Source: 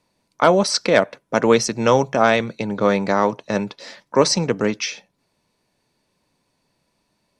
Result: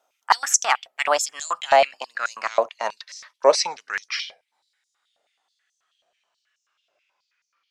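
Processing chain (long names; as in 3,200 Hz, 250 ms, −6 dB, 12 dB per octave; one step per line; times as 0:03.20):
gliding playback speed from 141% → 51%
high-pass on a step sequencer 9.3 Hz 640–6,100 Hz
level −4.5 dB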